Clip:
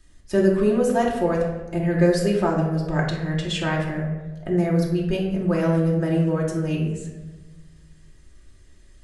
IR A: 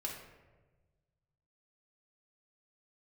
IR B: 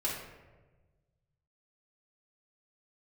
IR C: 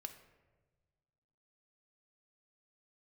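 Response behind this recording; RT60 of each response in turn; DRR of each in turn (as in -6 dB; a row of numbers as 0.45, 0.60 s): A; 1.3, 1.3, 1.3 s; -3.0, -7.5, 6.5 dB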